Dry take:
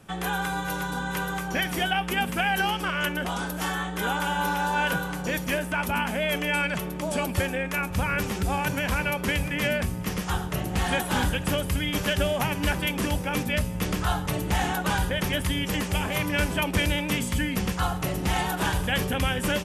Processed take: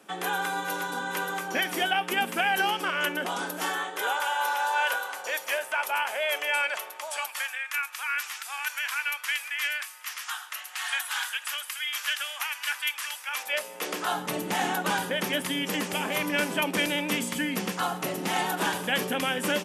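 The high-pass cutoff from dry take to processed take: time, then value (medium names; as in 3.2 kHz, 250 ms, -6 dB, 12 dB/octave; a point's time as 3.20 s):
high-pass 24 dB/octave
3.59 s 250 Hz
4.28 s 560 Hz
6.69 s 560 Hz
7.60 s 1.2 kHz
13.27 s 1.2 kHz
13.56 s 520 Hz
14.27 s 210 Hz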